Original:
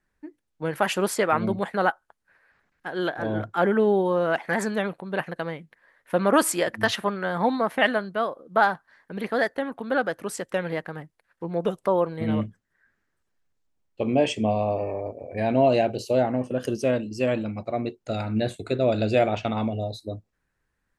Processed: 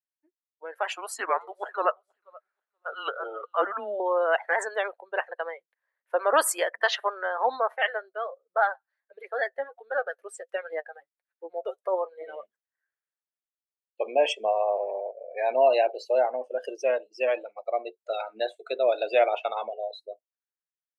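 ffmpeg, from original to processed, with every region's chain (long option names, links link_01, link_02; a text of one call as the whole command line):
ffmpeg -i in.wav -filter_complex "[0:a]asettb=1/sr,asplit=3[link_01][link_02][link_03];[link_01]atrim=end=0.934[link_04];[link_02]atrim=start=0.93:end=4,asetpts=PTS-STARTPTS,afade=type=in:duration=0.004:curve=qsin,afade=type=out:start_time=3.066:duration=0.004:curve=qsin,highpass=400,aecho=1:1:480|960:0.0841|0.0219,atrim=end_sample=135387,afreqshift=-200[link_05];[link_03]atrim=start=3.996[link_06];[link_04][link_05]acrossfade=duration=0.004:curve1=hsin:curve2=qsin[link_07];[link_07][link_06]acrossfade=duration=0.004:curve1=qsin:curve2=hsin,asettb=1/sr,asplit=3[link_08][link_09][link_10];[link_08]atrim=end=7.744[link_11];[link_09]atrim=start=7.74:end=12.43,asetpts=PTS-STARTPTS,afade=type=in:duration=0.004:curve=qsin,afade=type=out:start_time=4.686:duration=0.004:curve=qsin,equalizer=frequency=1000:width=5.8:gain=-7,flanger=delay=4.5:depth=3.5:regen=51:speed=1.4:shape=triangular[link_12];[link_10]atrim=start=12.426[link_13];[link_11][link_12]acrossfade=duration=0.004:curve1=hsin:curve2=qsin[link_14];[link_14][link_13]acrossfade=duration=0.004:curve1=qsin:curve2=hsin,highpass=frequency=500:width=0.5412,highpass=frequency=500:width=1.3066,afftdn=noise_reduction=22:noise_floor=-35,dynaudnorm=framelen=340:gausssize=7:maxgain=10dB,volume=-7.5dB" out.wav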